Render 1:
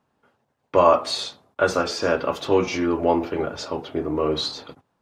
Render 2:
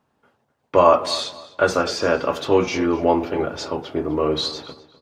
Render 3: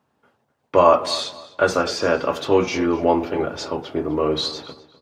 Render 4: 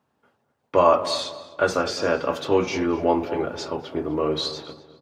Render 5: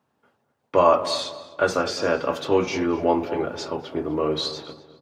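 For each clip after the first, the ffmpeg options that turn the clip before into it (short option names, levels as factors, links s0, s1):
-filter_complex "[0:a]asplit=2[s0][s1];[s1]adelay=253,lowpass=f=4400:p=1,volume=0.141,asplit=2[s2][s3];[s3]adelay=253,lowpass=f=4400:p=1,volume=0.28,asplit=2[s4][s5];[s5]adelay=253,lowpass=f=4400:p=1,volume=0.28[s6];[s0][s2][s4][s6]amix=inputs=4:normalize=0,volume=1.26"
-af "highpass=61"
-filter_complex "[0:a]asplit=2[s0][s1];[s1]adelay=212,lowpass=f=940:p=1,volume=0.224,asplit=2[s2][s3];[s3]adelay=212,lowpass=f=940:p=1,volume=0.44,asplit=2[s4][s5];[s5]adelay=212,lowpass=f=940:p=1,volume=0.44,asplit=2[s6][s7];[s7]adelay=212,lowpass=f=940:p=1,volume=0.44[s8];[s0][s2][s4][s6][s8]amix=inputs=5:normalize=0,volume=0.708"
-af "highpass=65"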